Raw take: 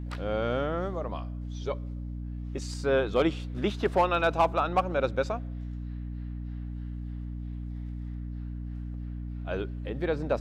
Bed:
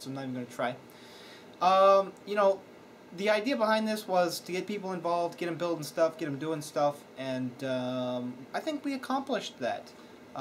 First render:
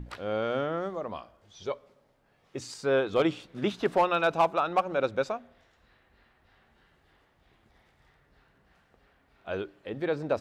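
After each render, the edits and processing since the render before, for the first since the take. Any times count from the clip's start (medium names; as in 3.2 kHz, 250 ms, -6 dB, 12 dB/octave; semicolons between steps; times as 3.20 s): hum notches 60/120/180/240/300 Hz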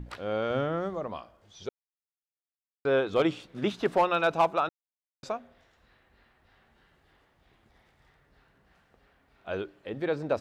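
0.50–1.07 s: peaking EQ 75 Hz +14 dB 1.5 oct; 1.69–2.85 s: mute; 4.69–5.23 s: mute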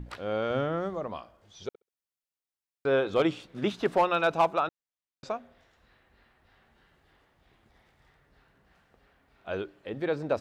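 1.68–3.20 s: flutter echo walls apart 11.3 m, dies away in 0.21 s; 4.59–5.30 s: distance through air 54 m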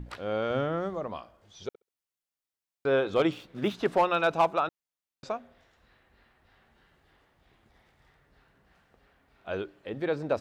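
3.32–3.75 s: median filter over 5 samples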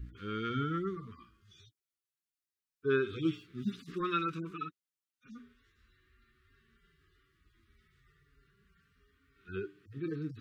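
harmonic-percussive separation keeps harmonic; elliptic band-stop 410–1200 Hz, stop band 40 dB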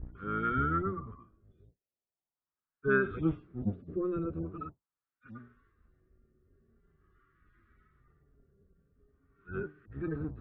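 octave divider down 1 oct, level -2 dB; LFO low-pass sine 0.43 Hz 530–1500 Hz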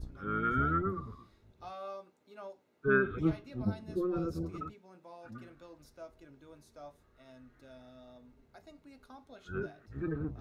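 add bed -22 dB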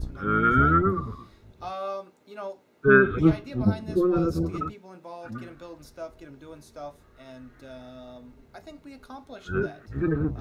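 trim +10.5 dB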